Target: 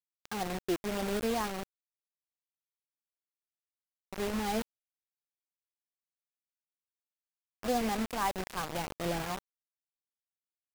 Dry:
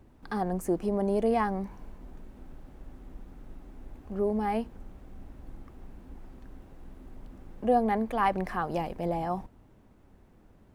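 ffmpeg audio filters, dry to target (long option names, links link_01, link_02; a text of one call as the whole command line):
ffmpeg -i in.wav -af "aphaser=in_gain=1:out_gain=1:delay=4.2:decay=0.26:speed=0.44:type=triangular,acrusher=bits=4:mix=0:aa=0.000001,volume=-6dB" out.wav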